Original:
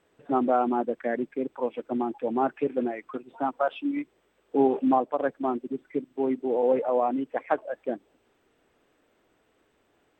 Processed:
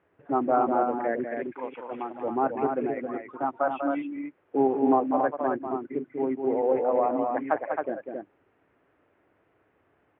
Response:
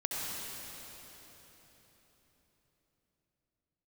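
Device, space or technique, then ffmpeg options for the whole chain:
bass cabinet: -filter_complex "[0:a]asettb=1/sr,asplit=3[link_01][link_02][link_03];[link_01]atrim=end=1.254[link_04];[link_02]atrim=start=1.25:end=2.15,asetpts=PTS-STARTPTS,afade=type=in:duration=0.004:curve=qsin,afade=type=out:start_time=0.896:duration=0.004:curve=qsin,tiltshelf=frequency=1100:gain=-9.5[link_05];[link_03]atrim=start=2.146[link_06];[link_04][link_05]acrossfade=duration=0.004:curve1=hsin:curve2=qsin[link_07];[link_07][link_06]acrossfade=duration=0.004:curve1=qsin:curve2=hsin,highpass=71,equalizer=frequency=96:width_type=q:width=4:gain=7,equalizer=frequency=230:width_type=q:width=4:gain=-5,equalizer=frequency=470:width_type=q:width=4:gain=-3,lowpass=frequency=2300:width=0.5412,lowpass=frequency=2300:width=1.3066,aecho=1:1:195.3|268.2:0.447|0.562"

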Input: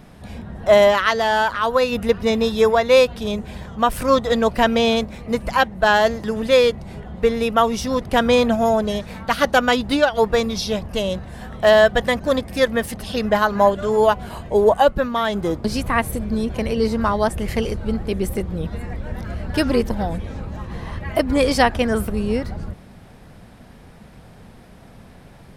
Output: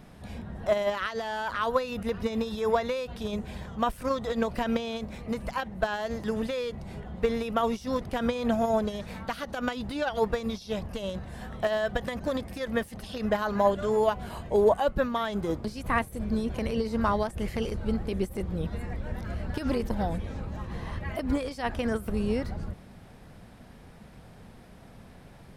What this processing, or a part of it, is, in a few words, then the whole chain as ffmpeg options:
de-esser from a sidechain: -filter_complex "[0:a]asplit=2[link_01][link_02];[link_02]highpass=frequency=5000:width=0.5412,highpass=frequency=5000:width=1.3066,apad=whole_len=1127270[link_03];[link_01][link_03]sidechaincompress=threshold=-41dB:ratio=8:attack=0.6:release=50,volume=-5.5dB"

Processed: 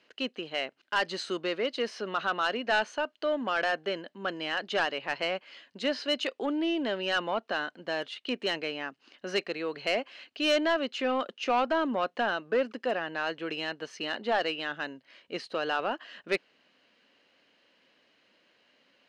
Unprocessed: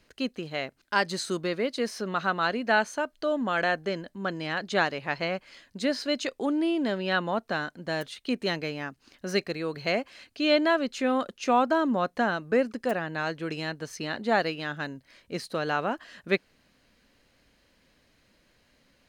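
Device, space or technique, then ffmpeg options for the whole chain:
intercom: -af "highpass=310,lowpass=4300,equalizer=frequency=2900:width_type=o:width=0.21:gain=8.5,asoftclip=type=tanh:threshold=-18.5dB"

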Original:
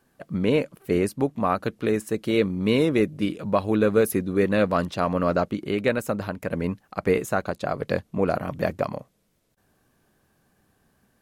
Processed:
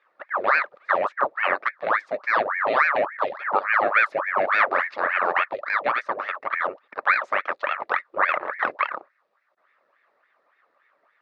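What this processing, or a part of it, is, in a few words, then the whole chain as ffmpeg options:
voice changer toy: -af "aeval=exprs='val(0)*sin(2*PI*1100*n/s+1100*0.85/3.5*sin(2*PI*3.5*n/s))':channel_layout=same,highpass=480,equalizer=frequency=580:width_type=q:width=4:gain=9,equalizer=frequency=1200:width_type=q:width=4:gain=9,equalizer=frequency=1800:width_type=q:width=4:gain=5,equalizer=frequency=3100:width_type=q:width=4:gain=-7,lowpass=frequency=3900:width=0.5412,lowpass=frequency=3900:width=1.3066"

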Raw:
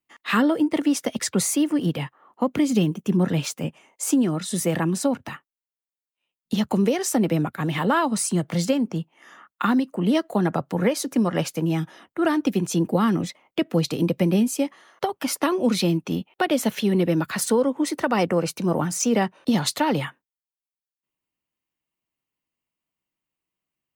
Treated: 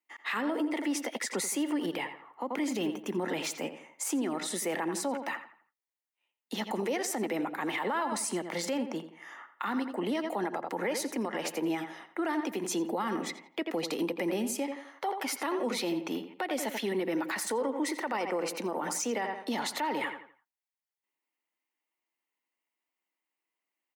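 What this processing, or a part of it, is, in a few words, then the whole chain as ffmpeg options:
laptop speaker: -filter_complex "[0:a]highpass=frequency=270:width=0.5412,highpass=frequency=270:width=1.3066,equalizer=frequency=870:width_type=o:width=0.41:gain=7,equalizer=frequency=2000:width_type=o:width=0.37:gain=8.5,asplit=2[link_01][link_02];[link_02]adelay=85,lowpass=frequency=3100:poles=1,volume=-11dB,asplit=2[link_03][link_04];[link_04]adelay=85,lowpass=frequency=3100:poles=1,volume=0.37,asplit=2[link_05][link_06];[link_06]adelay=85,lowpass=frequency=3100:poles=1,volume=0.37,asplit=2[link_07][link_08];[link_08]adelay=85,lowpass=frequency=3100:poles=1,volume=0.37[link_09];[link_01][link_03][link_05][link_07][link_09]amix=inputs=5:normalize=0,alimiter=limit=-20dB:level=0:latency=1:release=63,volume=-3.5dB"

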